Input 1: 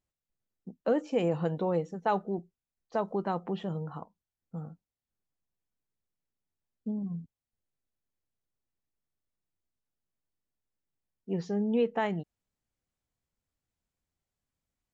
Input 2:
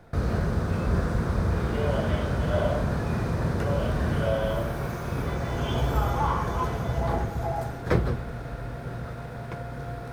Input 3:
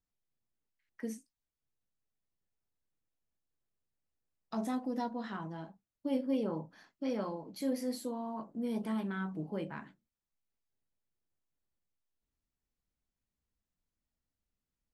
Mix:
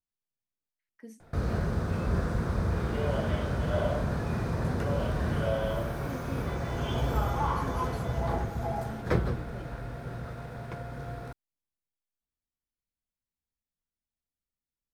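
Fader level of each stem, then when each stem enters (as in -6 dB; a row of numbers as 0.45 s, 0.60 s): mute, -3.5 dB, -8.0 dB; mute, 1.20 s, 0.00 s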